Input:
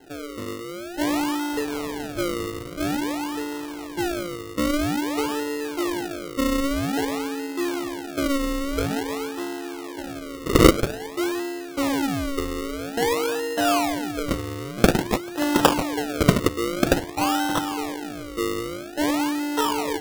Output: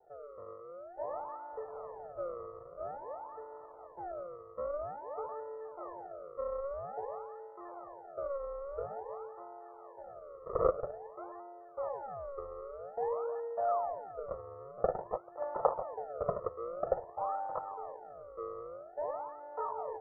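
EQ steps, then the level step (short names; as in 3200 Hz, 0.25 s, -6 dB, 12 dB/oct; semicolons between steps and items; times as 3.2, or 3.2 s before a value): rippled Chebyshev low-pass 1800 Hz, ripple 9 dB; resonant low shelf 470 Hz -9.5 dB, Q 1.5; fixed phaser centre 670 Hz, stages 4; -3.5 dB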